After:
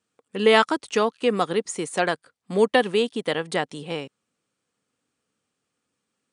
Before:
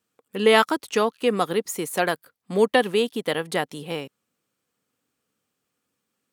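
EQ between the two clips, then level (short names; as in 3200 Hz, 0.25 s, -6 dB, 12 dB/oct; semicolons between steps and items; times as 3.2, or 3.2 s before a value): brick-wall FIR low-pass 10000 Hz; 0.0 dB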